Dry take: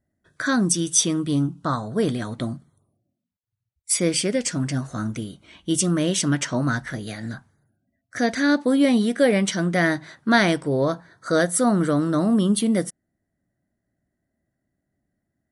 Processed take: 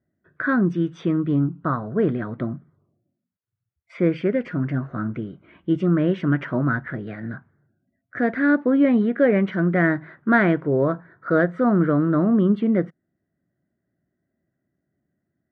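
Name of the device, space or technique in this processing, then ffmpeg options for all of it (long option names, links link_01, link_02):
bass cabinet: -af "highpass=81,equalizer=frequency=160:width_type=q:width=4:gain=4,equalizer=frequency=370:width_type=q:width=4:gain=5,equalizer=frequency=840:width_type=q:width=4:gain=-5,equalizer=frequency=1400:width_type=q:width=4:gain=3,lowpass=frequency=2100:width=0.5412,lowpass=frequency=2100:width=1.3066"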